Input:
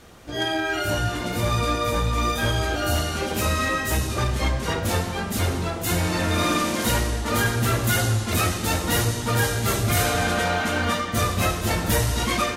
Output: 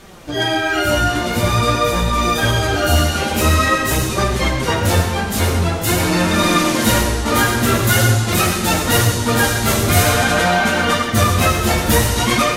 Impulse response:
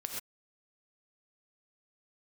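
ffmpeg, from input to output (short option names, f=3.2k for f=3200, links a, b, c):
-filter_complex "[0:a]flanger=delay=5.1:depth=8.9:regen=31:speed=0.47:shape=sinusoidal,asplit=2[a][b];[1:a]atrim=start_sample=2205[c];[b][c]afir=irnorm=-1:irlink=0,volume=-0.5dB[d];[a][d]amix=inputs=2:normalize=0,volume=6dB"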